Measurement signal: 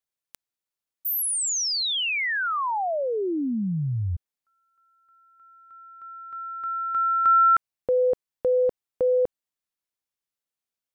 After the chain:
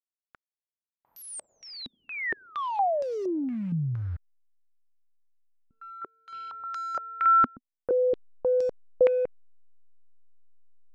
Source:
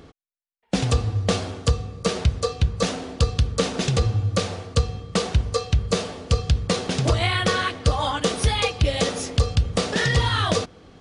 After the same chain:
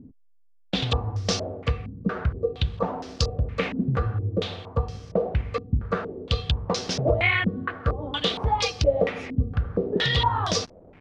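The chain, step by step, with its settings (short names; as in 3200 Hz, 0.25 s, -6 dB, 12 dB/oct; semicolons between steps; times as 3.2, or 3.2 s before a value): level-crossing sampler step -43 dBFS; stepped low-pass 4.3 Hz 250–5500 Hz; gain -5 dB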